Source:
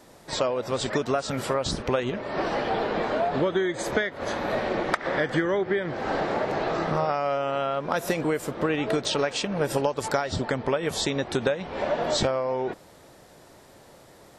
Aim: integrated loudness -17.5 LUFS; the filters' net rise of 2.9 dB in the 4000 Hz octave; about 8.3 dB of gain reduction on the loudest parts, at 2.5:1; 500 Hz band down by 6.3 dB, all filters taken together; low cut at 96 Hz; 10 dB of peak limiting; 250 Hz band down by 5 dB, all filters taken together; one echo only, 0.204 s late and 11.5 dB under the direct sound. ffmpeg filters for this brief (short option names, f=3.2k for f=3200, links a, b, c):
-af "highpass=96,equalizer=f=250:t=o:g=-4,equalizer=f=500:t=o:g=-7,equalizer=f=4k:t=o:g=3.5,acompressor=threshold=-34dB:ratio=2.5,alimiter=level_in=2dB:limit=-24dB:level=0:latency=1,volume=-2dB,aecho=1:1:204:0.266,volume=19dB"